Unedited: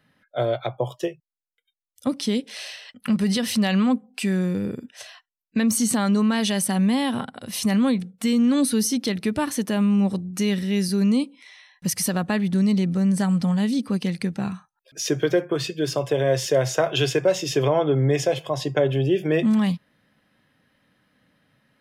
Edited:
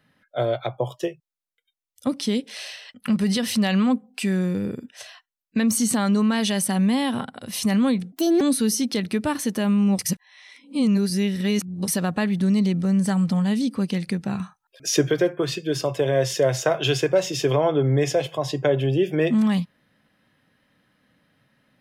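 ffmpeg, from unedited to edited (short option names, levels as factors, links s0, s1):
-filter_complex "[0:a]asplit=7[s0][s1][s2][s3][s4][s5][s6];[s0]atrim=end=8.124[s7];[s1]atrim=start=8.12:end=8.53,asetpts=PTS-STARTPTS,asetrate=62622,aresample=44100,atrim=end_sample=12733,asetpts=PTS-STARTPTS[s8];[s2]atrim=start=8.526:end=10.112[s9];[s3]atrim=start=10.108:end=12.002,asetpts=PTS-STARTPTS,areverse[s10];[s4]atrim=start=11.998:end=14.522[s11];[s5]atrim=start=14.518:end=15.232,asetpts=PTS-STARTPTS,volume=1.58[s12];[s6]atrim=start=15.228[s13];[s7][s8]acrossfade=d=0.004:c1=hsin:c2=hsin[s14];[s14][s9]acrossfade=d=0.004:c1=hsin:c2=hsin[s15];[s15][s10]acrossfade=d=0.004:c1=hsin:c2=hsin[s16];[s16][s11]acrossfade=d=0.004:c1=hsin:c2=hsin[s17];[s17][s12]acrossfade=d=0.004:c1=hsin:c2=hsin[s18];[s18][s13]acrossfade=d=0.004:c1=hsin:c2=hsin"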